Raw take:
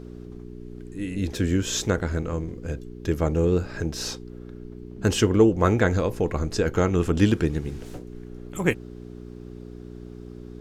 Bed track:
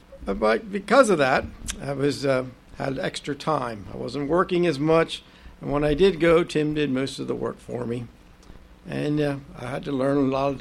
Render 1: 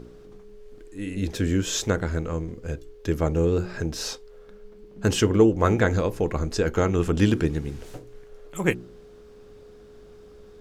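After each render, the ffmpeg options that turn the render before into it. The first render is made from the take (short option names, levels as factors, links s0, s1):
-af "bandreject=f=60:t=h:w=4,bandreject=f=120:t=h:w=4,bandreject=f=180:t=h:w=4,bandreject=f=240:t=h:w=4,bandreject=f=300:t=h:w=4,bandreject=f=360:t=h:w=4"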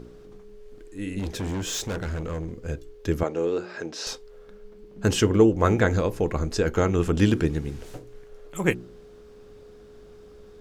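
-filter_complex "[0:a]asettb=1/sr,asplit=3[s0][s1][s2];[s0]atrim=end=1.194[s3];[s1]atrim=start=1.19:end=2.57,asetpts=PTS-STARTPTS,afade=t=in:d=0.004:c=qsin,afade=t=out:st=1.376:d=0.004:c=qsin,volume=21.1,asoftclip=hard,volume=0.0473[s4];[s2]atrim=start=2.566[s5];[s3][s4]acrossfade=d=0.004:c1=hsin:c2=qsin[s6];[s6][s5]acrossfade=d=0.004:c1=qsin:c2=hsin,asettb=1/sr,asplit=3[s7][s8][s9];[s7]atrim=end=3.234[s10];[s8]atrim=start=3.23:end=4.07,asetpts=PTS-STARTPTS,afade=t=in:d=0.004:c=qsin,afade=t=out:st=0.836:d=0.004:c=qsin,highpass=340,lowpass=6000[s11];[s9]atrim=start=4.066[s12];[s10][s11]acrossfade=d=0.004:c1=hsin:c2=qsin[s13];[s13][s12]acrossfade=d=0.004:c1=qsin:c2=hsin"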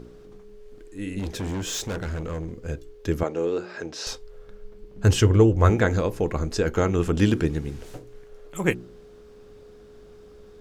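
-filter_complex "[0:a]asettb=1/sr,asplit=3[s0][s1][s2];[s0]atrim=end=3.834[s3];[s1]atrim=start=3.83:end=5.7,asetpts=PTS-STARTPTS,afade=t=in:d=0.004:c=qsin,afade=t=out:st=1.866:d=0.004:c=qsin,lowshelf=f=140:t=q:w=1.5:g=6.5[s4];[s2]atrim=start=5.696[s5];[s3][s4]acrossfade=d=0.004:c1=hsin:c2=qsin[s6];[s6][s5]acrossfade=d=0.004:c1=qsin:c2=hsin"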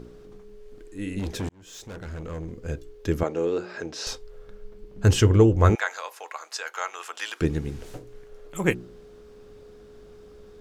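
-filter_complex "[0:a]asettb=1/sr,asplit=3[s0][s1][s2];[s0]atrim=end=5.754[s3];[s1]atrim=start=5.75:end=7.41,asetpts=PTS-STARTPTS,afade=t=in:d=0.004:c=qsin,afade=t=out:st=1.656:d=0.004:c=qsin,highpass=f=820:w=0.5412,highpass=f=820:w=1.3066[s4];[s2]atrim=start=7.406[s5];[s3][s4]acrossfade=d=0.004:c1=hsin:c2=qsin[s6];[s6][s5]acrossfade=d=0.004:c1=qsin:c2=hsin,asplit=2[s7][s8];[s7]atrim=end=1.49,asetpts=PTS-STARTPTS,afade=t=out:st=1.486:d=0.004:c=hsin[s9];[s8]atrim=start=1.49,asetpts=PTS-STARTPTS,afade=t=in:d=1.24[s10];[s9][s10]concat=n=2:v=0:a=1"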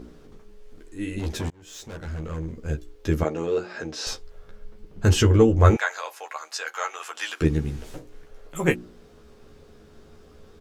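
-filter_complex "[0:a]asplit=2[s0][s1];[s1]adelay=13,volume=0.668[s2];[s0][s2]amix=inputs=2:normalize=0"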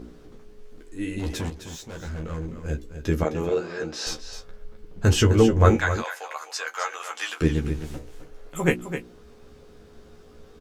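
-filter_complex "[0:a]asplit=2[s0][s1];[s1]adelay=17,volume=0.251[s2];[s0][s2]amix=inputs=2:normalize=0,asplit=2[s3][s4];[s4]aecho=0:1:259:0.316[s5];[s3][s5]amix=inputs=2:normalize=0"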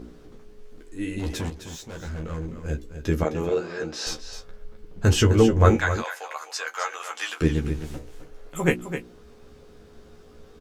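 -af anull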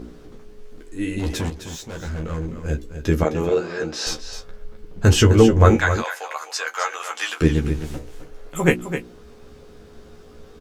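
-af "volume=1.68,alimiter=limit=0.891:level=0:latency=1"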